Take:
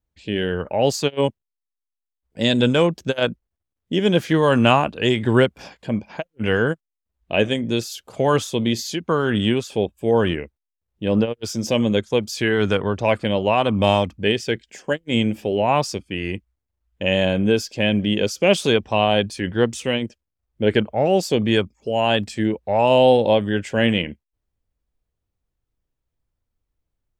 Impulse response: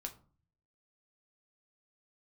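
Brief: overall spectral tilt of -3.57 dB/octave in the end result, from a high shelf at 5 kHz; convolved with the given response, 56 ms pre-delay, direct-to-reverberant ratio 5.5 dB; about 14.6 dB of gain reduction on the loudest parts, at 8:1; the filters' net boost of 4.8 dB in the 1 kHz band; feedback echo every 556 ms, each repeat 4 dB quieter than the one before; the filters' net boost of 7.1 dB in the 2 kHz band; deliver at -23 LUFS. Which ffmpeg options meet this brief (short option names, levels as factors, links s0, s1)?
-filter_complex "[0:a]equalizer=f=1000:t=o:g=4.5,equalizer=f=2000:t=o:g=9,highshelf=f=5000:g=-5,acompressor=threshold=0.0708:ratio=8,aecho=1:1:556|1112|1668|2224|2780|3336|3892|4448|5004:0.631|0.398|0.25|0.158|0.0994|0.0626|0.0394|0.0249|0.0157,asplit=2[s0][s1];[1:a]atrim=start_sample=2205,adelay=56[s2];[s1][s2]afir=irnorm=-1:irlink=0,volume=0.708[s3];[s0][s3]amix=inputs=2:normalize=0,volume=1.41"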